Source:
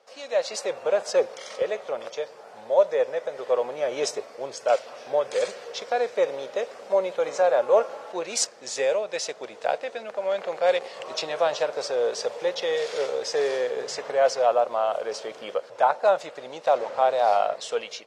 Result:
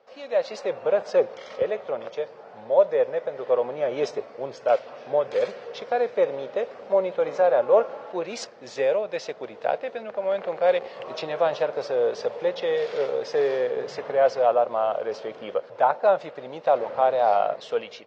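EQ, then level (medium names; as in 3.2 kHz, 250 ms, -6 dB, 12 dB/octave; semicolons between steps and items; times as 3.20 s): distance through air 200 m; bass shelf 260 Hz +9.5 dB; 0.0 dB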